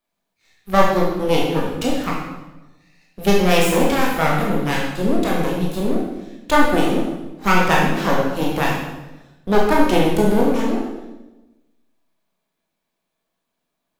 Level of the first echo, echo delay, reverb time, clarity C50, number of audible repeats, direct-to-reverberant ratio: no echo audible, no echo audible, 1.1 s, 1.0 dB, no echo audible, −3.5 dB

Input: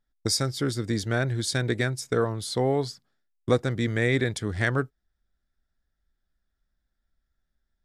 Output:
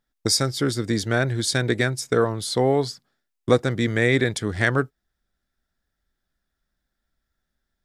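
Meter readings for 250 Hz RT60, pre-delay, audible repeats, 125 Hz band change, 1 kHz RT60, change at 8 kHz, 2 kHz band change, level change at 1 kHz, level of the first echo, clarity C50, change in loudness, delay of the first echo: no reverb audible, no reverb audible, no echo audible, +2.5 dB, no reverb audible, +5.0 dB, +5.0 dB, +5.0 dB, no echo audible, no reverb audible, +4.5 dB, no echo audible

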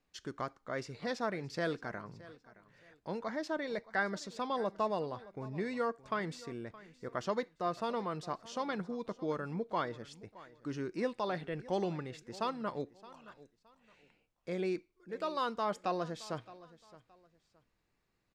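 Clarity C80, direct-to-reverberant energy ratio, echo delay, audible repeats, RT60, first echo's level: no reverb audible, no reverb audible, 619 ms, 2, no reverb audible, −19.0 dB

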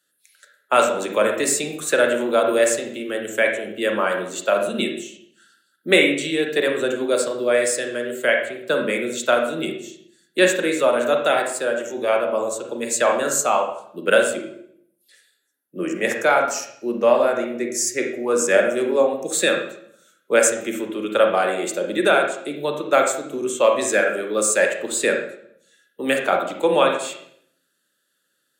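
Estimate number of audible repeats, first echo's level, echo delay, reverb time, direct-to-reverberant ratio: no echo audible, no echo audible, no echo audible, 0.70 s, 2.5 dB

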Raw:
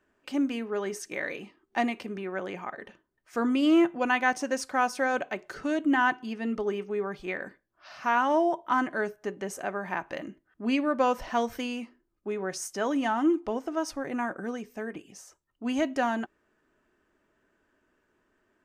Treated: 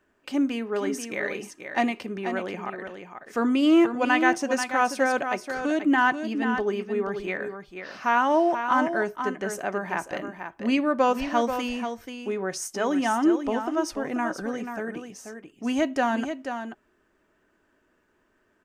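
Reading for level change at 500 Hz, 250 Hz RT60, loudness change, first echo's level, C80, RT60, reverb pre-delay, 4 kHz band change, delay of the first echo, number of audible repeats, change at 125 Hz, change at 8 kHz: +3.5 dB, no reverb audible, +3.5 dB, −8.0 dB, no reverb audible, no reverb audible, no reverb audible, +3.5 dB, 485 ms, 1, +3.5 dB, +3.5 dB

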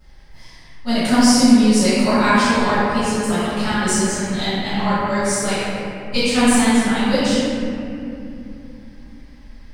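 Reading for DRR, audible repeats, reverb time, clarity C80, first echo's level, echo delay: −20.5 dB, no echo audible, 2.8 s, −3.0 dB, no echo audible, no echo audible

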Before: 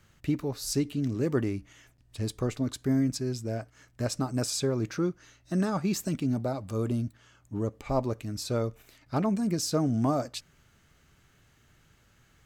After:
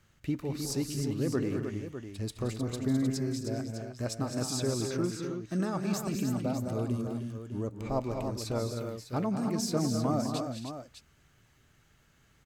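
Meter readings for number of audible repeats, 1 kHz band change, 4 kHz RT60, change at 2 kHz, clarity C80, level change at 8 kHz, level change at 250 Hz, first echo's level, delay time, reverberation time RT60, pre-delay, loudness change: 5, −2.0 dB, no reverb audible, −2.0 dB, no reverb audible, −2.0 dB, −2.0 dB, −14.5 dB, 175 ms, no reverb audible, no reverb audible, −2.5 dB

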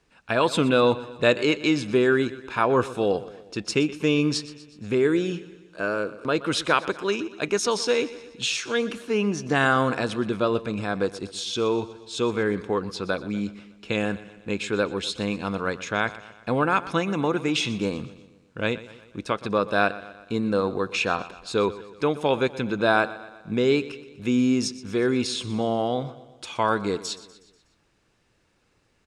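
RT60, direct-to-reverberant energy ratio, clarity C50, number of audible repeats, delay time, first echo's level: no reverb audible, no reverb audible, no reverb audible, 4, 122 ms, −17.0 dB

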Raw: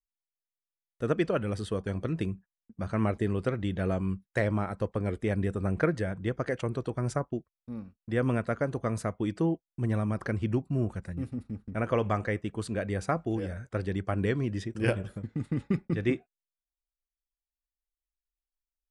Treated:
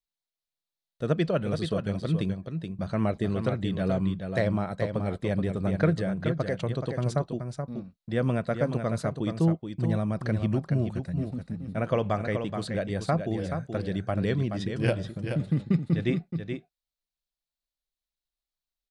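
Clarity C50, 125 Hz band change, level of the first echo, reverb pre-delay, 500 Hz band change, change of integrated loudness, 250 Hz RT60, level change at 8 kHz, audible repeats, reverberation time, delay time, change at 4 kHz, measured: no reverb audible, +3.5 dB, −7.0 dB, no reverb audible, +2.0 dB, +2.5 dB, no reverb audible, 0.0 dB, 1, no reverb audible, 427 ms, +5.5 dB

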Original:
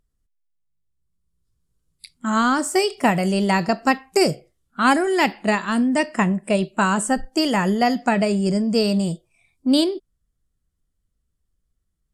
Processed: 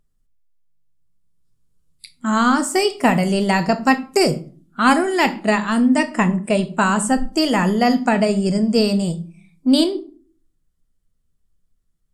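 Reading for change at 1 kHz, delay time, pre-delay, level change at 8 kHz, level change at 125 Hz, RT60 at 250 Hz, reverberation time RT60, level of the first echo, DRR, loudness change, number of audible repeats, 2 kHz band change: +2.0 dB, no echo audible, 4 ms, +2.0 dB, +2.5 dB, 0.70 s, 0.40 s, no echo audible, 9.0 dB, +2.5 dB, no echo audible, +2.0 dB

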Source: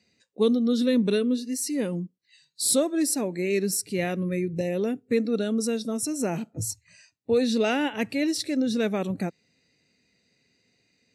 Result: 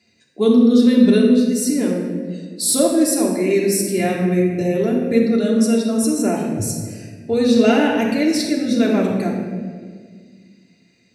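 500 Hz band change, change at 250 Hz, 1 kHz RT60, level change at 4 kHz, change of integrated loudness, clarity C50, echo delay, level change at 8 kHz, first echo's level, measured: +8.0 dB, +10.5 dB, 1.5 s, +6.0 dB, +9.0 dB, 2.0 dB, no echo audible, +6.0 dB, no echo audible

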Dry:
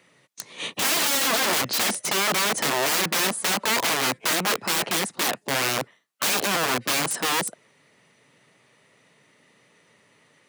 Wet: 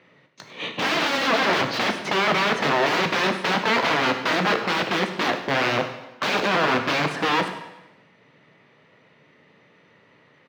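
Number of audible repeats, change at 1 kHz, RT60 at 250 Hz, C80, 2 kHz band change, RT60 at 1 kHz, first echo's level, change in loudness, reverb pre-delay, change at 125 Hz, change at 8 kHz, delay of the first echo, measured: 1, +4.5 dB, 0.95 s, 10.0 dB, +3.0 dB, 1.0 s, −16.0 dB, +0.5 dB, 6 ms, +5.0 dB, −14.5 dB, 100 ms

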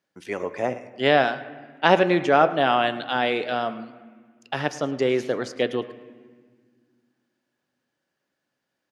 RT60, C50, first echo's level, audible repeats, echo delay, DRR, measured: 1.6 s, 13.5 dB, −19.0 dB, 1, 108 ms, 11.5 dB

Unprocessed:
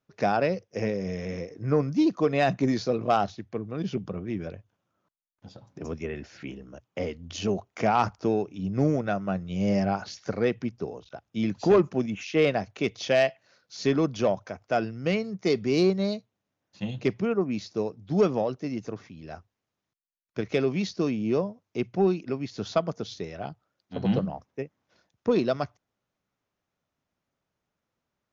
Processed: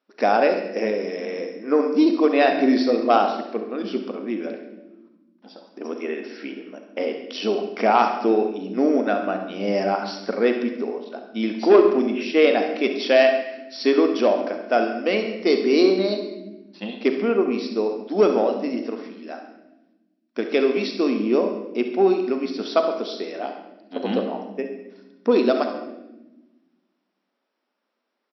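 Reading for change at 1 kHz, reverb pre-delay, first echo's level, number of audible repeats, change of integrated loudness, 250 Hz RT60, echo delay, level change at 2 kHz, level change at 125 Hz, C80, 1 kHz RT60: +6.5 dB, 34 ms, −12.5 dB, 1, +6.0 dB, 2.8 s, 68 ms, +6.5 dB, below −10 dB, 9.0 dB, 0.80 s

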